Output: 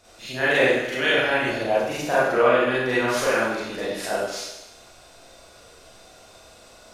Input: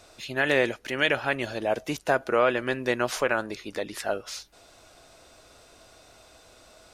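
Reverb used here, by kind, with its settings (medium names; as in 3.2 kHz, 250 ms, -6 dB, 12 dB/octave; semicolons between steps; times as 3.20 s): Schroeder reverb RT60 0.94 s, combs from 32 ms, DRR -9.5 dB; trim -5 dB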